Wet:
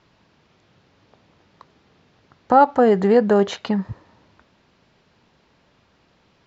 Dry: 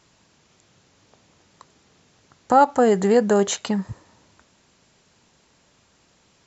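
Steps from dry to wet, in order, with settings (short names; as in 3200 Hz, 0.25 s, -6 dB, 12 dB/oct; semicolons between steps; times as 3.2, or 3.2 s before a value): LPF 5100 Hz 24 dB/oct; high shelf 3900 Hz -8 dB; gain +2 dB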